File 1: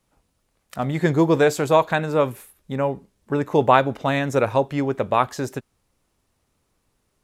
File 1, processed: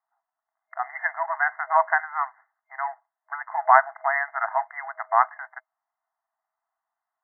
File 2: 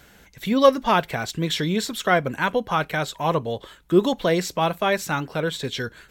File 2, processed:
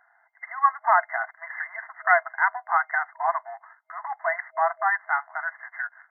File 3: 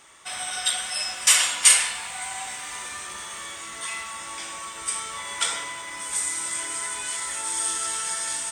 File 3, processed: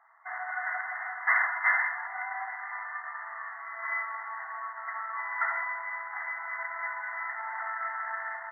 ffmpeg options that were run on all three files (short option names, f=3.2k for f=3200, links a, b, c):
-af "adynamicsmooth=sensitivity=6:basefreq=830,crystalizer=i=7.5:c=0,afftfilt=real='re*between(b*sr/4096,640,2100)':imag='im*between(b*sr/4096,640,2100)':win_size=4096:overlap=0.75,volume=-2.5dB"